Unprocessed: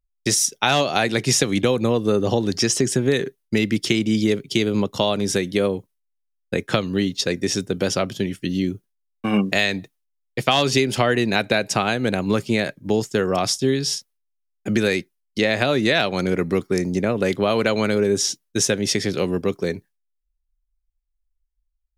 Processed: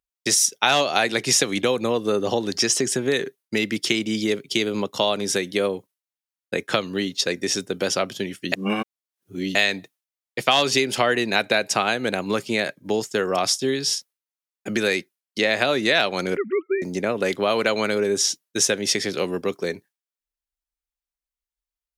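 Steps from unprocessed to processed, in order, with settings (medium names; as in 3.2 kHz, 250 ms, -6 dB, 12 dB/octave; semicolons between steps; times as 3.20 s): 16.37–16.82 s: formants replaced by sine waves; high-pass 440 Hz 6 dB/octave; 8.52–9.55 s: reverse; trim +1 dB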